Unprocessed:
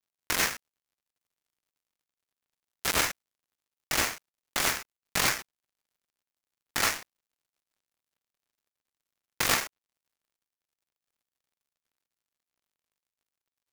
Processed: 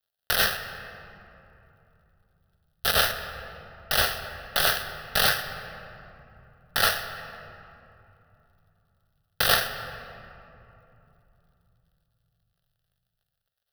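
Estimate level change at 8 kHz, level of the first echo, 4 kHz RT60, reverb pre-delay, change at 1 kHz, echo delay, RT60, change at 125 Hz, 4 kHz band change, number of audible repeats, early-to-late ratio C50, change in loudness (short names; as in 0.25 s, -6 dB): -2.0 dB, none, 1.6 s, 10 ms, +4.5 dB, none, 3.0 s, +6.0 dB, +6.0 dB, none, 9.0 dB, +3.5 dB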